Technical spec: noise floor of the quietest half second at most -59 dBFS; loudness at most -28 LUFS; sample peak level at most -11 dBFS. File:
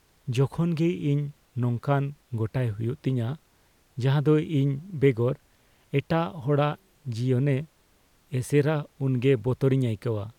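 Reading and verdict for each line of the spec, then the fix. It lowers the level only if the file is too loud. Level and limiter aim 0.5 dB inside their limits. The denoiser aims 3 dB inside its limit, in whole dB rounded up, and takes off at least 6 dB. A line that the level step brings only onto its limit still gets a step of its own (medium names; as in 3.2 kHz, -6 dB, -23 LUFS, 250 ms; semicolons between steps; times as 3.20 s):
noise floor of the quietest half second -63 dBFS: pass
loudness -26.5 LUFS: fail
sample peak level -10.0 dBFS: fail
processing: trim -2 dB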